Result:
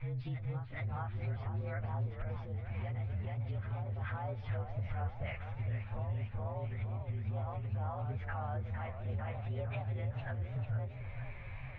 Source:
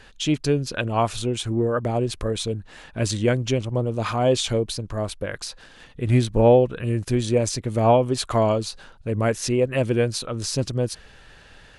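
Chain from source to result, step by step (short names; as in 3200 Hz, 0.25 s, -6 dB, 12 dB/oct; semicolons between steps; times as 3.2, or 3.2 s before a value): inharmonic rescaling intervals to 115%; EQ curve 130 Hz 0 dB, 310 Hz -22 dB, 880 Hz -5 dB; reverse echo 0.429 s -11.5 dB; compressor 5:1, threshold -36 dBFS, peak gain reduction 17 dB; steep low-pass 2700 Hz 36 dB/oct; limiter -35.5 dBFS, peak gain reduction 8.5 dB; on a send at -24 dB: reverb RT60 0.85 s, pre-delay 0.102 s; on the sum: vocal rider within 10 dB 2 s; warbling echo 0.455 s, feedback 62%, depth 216 cents, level -8.5 dB; gain +3.5 dB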